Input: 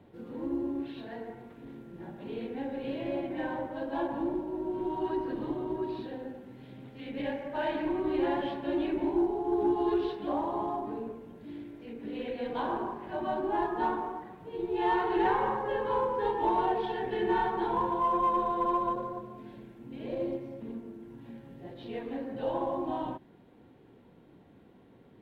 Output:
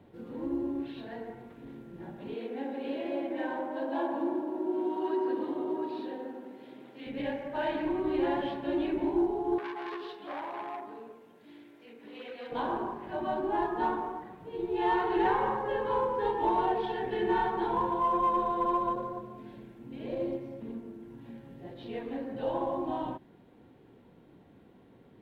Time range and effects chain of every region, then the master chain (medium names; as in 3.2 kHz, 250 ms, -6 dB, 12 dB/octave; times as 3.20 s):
2.34–7.07 s: high-pass 240 Hz 24 dB/octave + feedback echo behind a low-pass 85 ms, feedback 74%, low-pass 1.3 kHz, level -7.5 dB
9.58–12.52 s: high-pass 860 Hz 6 dB/octave + transformer saturation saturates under 1.4 kHz
whole clip: none